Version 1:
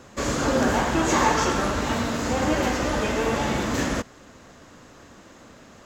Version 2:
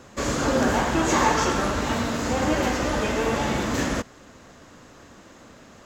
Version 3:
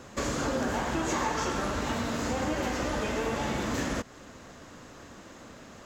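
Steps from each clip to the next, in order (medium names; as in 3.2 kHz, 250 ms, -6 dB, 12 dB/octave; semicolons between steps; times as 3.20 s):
no audible change
compression 3:1, threshold -29 dBFS, peak gain reduction 10.5 dB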